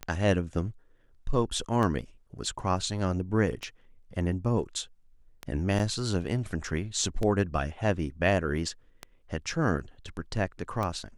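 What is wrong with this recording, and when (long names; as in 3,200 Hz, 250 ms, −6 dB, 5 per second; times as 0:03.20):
scratch tick 33 1/3 rpm −18 dBFS
0:05.79–0:05.80: drop-out 5.8 ms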